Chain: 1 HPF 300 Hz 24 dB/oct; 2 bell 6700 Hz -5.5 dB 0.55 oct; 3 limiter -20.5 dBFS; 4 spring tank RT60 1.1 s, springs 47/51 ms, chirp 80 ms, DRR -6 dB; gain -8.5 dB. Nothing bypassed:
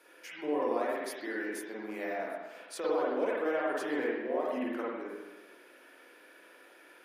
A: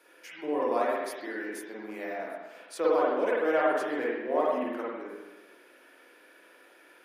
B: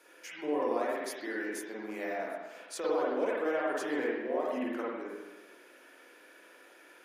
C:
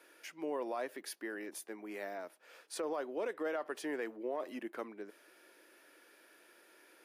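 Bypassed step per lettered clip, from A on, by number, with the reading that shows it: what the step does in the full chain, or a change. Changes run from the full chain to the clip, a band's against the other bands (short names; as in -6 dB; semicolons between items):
3, momentary loudness spread change +3 LU; 2, 8 kHz band +2.5 dB; 4, crest factor change -4.0 dB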